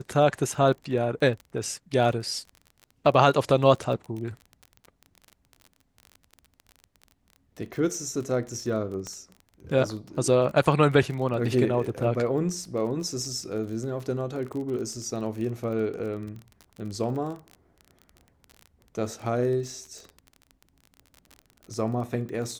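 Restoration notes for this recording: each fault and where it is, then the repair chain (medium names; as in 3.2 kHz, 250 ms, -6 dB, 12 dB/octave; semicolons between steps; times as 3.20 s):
crackle 29 per s -34 dBFS
9.07 s: pop -22 dBFS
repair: de-click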